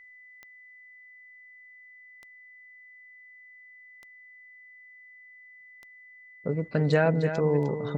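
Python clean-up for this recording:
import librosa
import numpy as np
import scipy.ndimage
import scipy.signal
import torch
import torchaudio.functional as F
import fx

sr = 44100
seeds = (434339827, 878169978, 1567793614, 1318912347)

y = fx.fix_declick_ar(x, sr, threshold=10.0)
y = fx.notch(y, sr, hz=2000.0, q=30.0)
y = fx.fix_echo_inverse(y, sr, delay_ms=305, level_db=-9.5)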